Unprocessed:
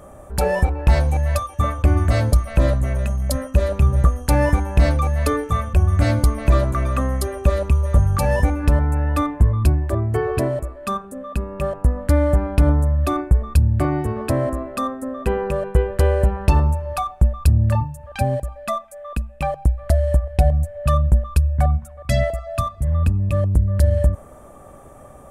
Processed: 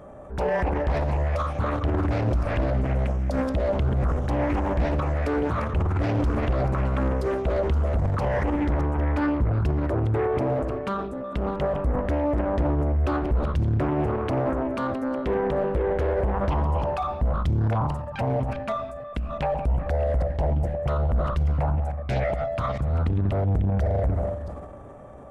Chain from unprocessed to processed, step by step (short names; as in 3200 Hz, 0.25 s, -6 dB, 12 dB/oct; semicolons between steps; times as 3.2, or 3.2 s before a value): reverse delay 0.34 s, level -14 dB; notch 1200 Hz, Q 24; on a send at -13 dB: reverb RT60 2.1 s, pre-delay 5 ms; on the sum: transient shaper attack 0 dB, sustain +8 dB; low shelf 83 Hz -8 dB; limiter -15 dBFS, peak gain reduction 11 dB; tape spacing loss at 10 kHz 21 dB; Doppler distortion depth 0.75 ms